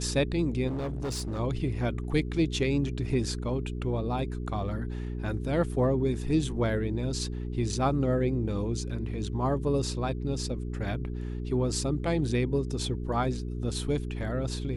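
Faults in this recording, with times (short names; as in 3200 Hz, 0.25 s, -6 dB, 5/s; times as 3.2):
hum 60 Hz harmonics 7 -34 dBFS
0.67–1.4 clipped -29 dBFS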